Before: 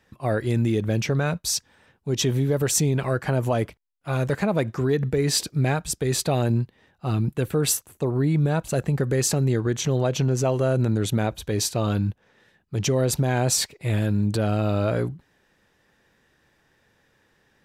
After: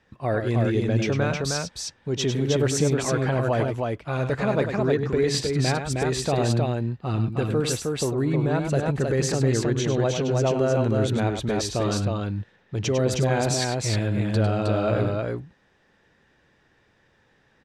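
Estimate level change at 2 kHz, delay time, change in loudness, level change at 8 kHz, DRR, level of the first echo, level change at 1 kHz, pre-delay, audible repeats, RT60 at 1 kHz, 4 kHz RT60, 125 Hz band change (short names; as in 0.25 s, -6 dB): +1.5 dB, 0.101 s, -0.5 dB, -4.5 dB, none, -8.0 dB, +1.5 dB, none, 2, none, none, -1.0 dB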